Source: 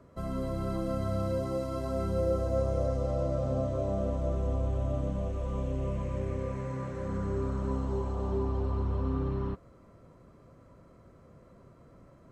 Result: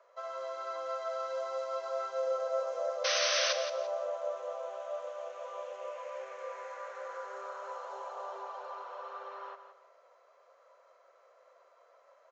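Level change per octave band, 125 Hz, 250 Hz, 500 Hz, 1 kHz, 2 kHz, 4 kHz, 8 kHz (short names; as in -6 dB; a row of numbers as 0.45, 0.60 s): under -40 dB, under -30 dB, -2.5 dB, +2.5 dB, +11.5 dB, +18.0 dB, n/a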